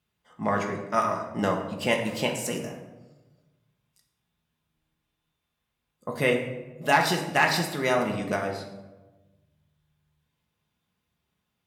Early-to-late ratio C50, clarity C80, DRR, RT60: 6.5 dB, 8.5 dB, 1.0 dB, 1.2 s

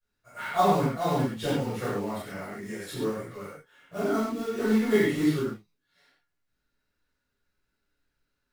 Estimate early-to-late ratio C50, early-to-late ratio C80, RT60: −2.5 dB, 1.5 dB, non-exponential decay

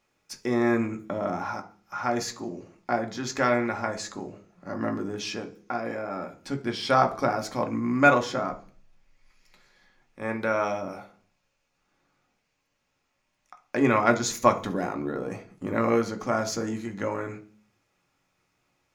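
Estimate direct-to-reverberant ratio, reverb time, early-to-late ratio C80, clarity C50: 4.5 dB, 0.45 s, 20.0 dB, 15.0 dB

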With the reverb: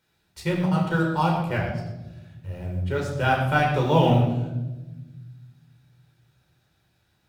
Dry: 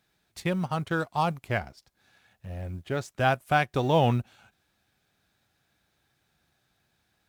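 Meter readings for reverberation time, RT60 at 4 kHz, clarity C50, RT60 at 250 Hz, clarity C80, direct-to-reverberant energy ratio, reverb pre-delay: 1.1 s, 0.75 s, 4.5 dB, 1.9 s, 6.0 dB, −1.5 dB, 13 ms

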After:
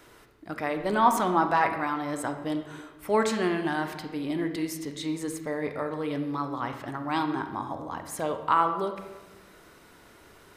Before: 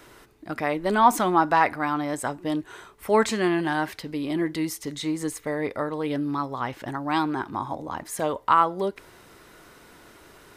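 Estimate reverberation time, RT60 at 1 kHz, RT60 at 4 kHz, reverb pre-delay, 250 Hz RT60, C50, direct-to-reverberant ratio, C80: 1.2 s, 1.1 s, 0.80 s, 32 ms, 1.4 s, 8.0 dB, 6.5 dB, 10.0 dB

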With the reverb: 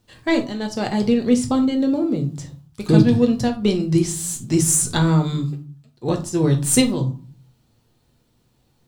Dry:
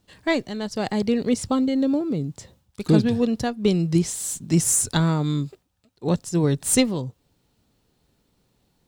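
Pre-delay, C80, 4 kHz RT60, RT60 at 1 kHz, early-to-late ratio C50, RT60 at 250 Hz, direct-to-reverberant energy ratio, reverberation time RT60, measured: 8 ms, 18.5 dB, 0.25 s, 0.40 s, 12.5 dB, 0.65 s, 3.5 dB, 0.40 s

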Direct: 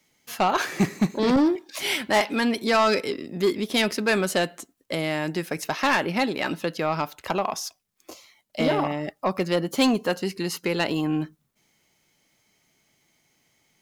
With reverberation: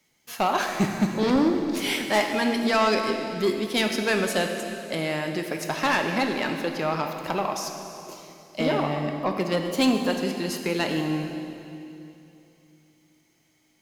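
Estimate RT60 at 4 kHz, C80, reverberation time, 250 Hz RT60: 2.6 s, 6.0 dB, 2.8 s, 3.2 s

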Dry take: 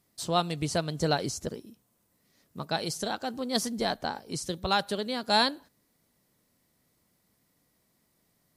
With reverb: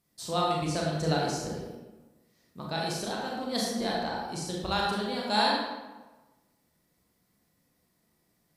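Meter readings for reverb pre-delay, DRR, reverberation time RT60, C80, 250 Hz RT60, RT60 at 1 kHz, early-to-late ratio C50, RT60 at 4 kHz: 28 ms, −4.0 dB, 1.2 s, 2.0 dB, 1.2 s, 1.2 s, −0.5 dB, 0.75 s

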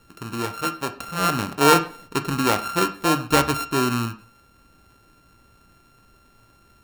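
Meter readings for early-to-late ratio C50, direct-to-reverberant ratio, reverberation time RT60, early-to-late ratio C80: 14.0 dB, 8.5 dB, 0.45 s, 18.5 dB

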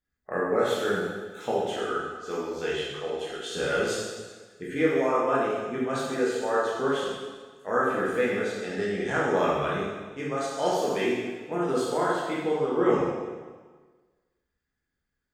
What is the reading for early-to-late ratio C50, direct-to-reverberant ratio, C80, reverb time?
−1.0 dB, −7.0 dB, 1.5 dB, 1.4 s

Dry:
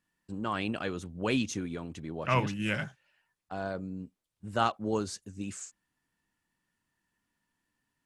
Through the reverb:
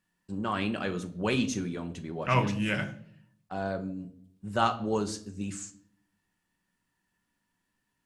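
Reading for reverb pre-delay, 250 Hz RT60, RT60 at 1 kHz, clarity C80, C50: 5 ms, 0.90 s, 0.50 s, 18.5 dB, 14.5 dB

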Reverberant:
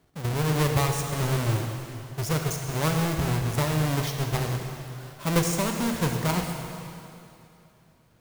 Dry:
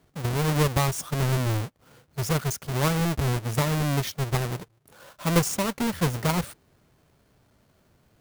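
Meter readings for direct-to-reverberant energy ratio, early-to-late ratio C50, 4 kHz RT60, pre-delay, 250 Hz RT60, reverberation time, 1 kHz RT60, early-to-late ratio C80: 3.0 dB, 4.0 dB, 2.6 s, 21 ms, 2.7 s, 2.7 s, 2.7 s, 5.0 dB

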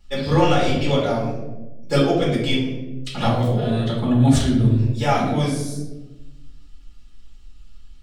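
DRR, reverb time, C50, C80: −7.5 dB, 1.1 s, 2.5 dB, 6.0 dB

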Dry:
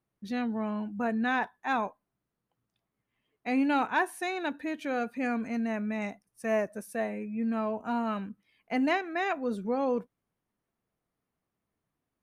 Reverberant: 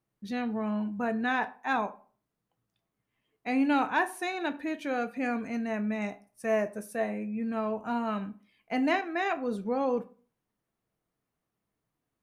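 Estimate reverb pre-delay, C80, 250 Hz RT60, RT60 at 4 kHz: 6 ms, 22.5 dB, 0.45 s, 0.25 s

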